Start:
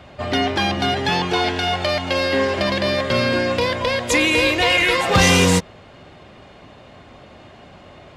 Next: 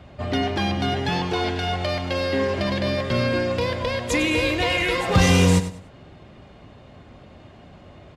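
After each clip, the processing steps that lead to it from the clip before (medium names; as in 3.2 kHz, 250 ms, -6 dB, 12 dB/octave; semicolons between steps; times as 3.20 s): bass shelf 330 Hz +9 dB; on a send: feedback delay 99 ms, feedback 26%, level -12 dB; on the sum: trim -7 dB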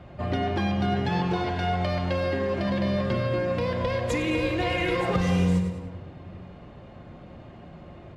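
treble shelf 2.8 kHz -9.5 dB; compression 6:1, threshold -24 dBFS, peak gain reduction 12 dB; simulated room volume 1400 m³, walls mixed, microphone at 0.87 m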